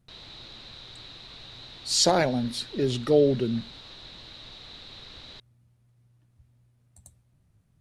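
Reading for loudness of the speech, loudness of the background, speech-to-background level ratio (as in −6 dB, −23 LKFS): −24.5 LKFS, −43.5 LKFS, 19.0 dB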